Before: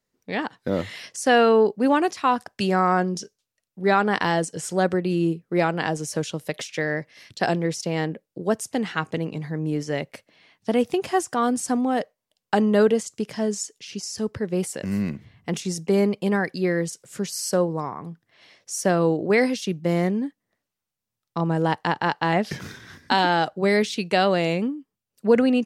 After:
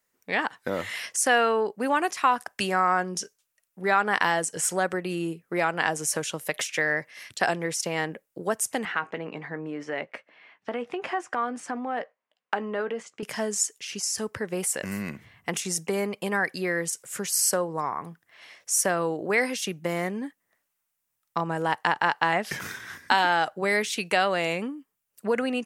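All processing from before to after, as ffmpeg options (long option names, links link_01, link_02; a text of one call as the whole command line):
ffmpeg -i in.wav -filter_complex "[0:a]asettb=1/sr,asplit=3[link_01][link_02][link_03];[link_01]atrim=end=8.854[link_04];[link_02]atrim=start=8.85:end=13.23,asetpts=PTS-STARTPTS,afade=type=in:duration=0.004:curve=qsin,afade=type=out:start_time=4.376:duration=0.004:curve=qsin,highpass=190,lowpass=2600,asplit=2[link_05][link_06];[link_06]adelay=17,volume=-13dB[link_07];[link_05][link_07]amix=inputs=2:normalize=0,atrim=end_sample=193158,acompressor=threshold=-27dB:ratio=2.5:attack=3.2:release=140:knee=1:detection=peak[link_08];[link_03]atrim=start=13.226[link_09];[link_04][link_08]acrossfade=duration=0.004:curve1=hsin:curve2=qsin[link_10];[link_10][link_09]acrossfade=duration=0.004:curve1=qsin:curve2=hsin,equalizer=frequency=4300:width=0.9:gain=-11,acompressor=threshold=-25dB:ratio=2,tiltshelf=frequency=680:gain=-9.5,volume=2dB" out.wav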